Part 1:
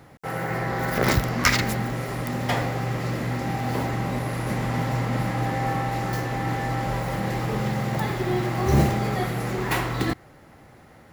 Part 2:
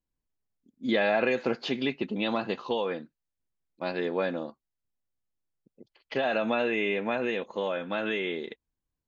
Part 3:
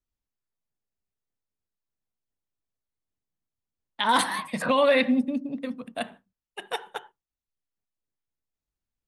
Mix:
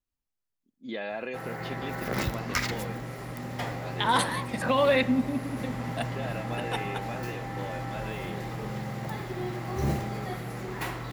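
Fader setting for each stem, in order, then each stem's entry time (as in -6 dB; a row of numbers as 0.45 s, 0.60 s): -9.0 dB, -10.0 dB, -2.5 dB; 1.10 s, 0.00 s, 0.00 s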